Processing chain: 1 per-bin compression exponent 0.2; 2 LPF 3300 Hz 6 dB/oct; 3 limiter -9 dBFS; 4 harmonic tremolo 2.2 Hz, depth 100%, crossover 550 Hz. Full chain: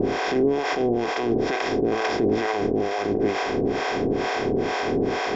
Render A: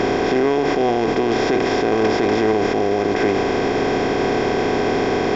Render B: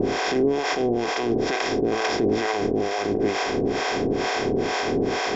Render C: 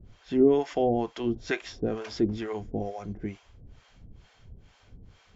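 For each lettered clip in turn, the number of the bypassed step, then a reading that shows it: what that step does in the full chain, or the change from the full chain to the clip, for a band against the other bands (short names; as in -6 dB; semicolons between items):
4, crest factor change -4.0 dB; 2, 4 kHz band +3.5 dB; 1, 2 kHz band -7.0 dB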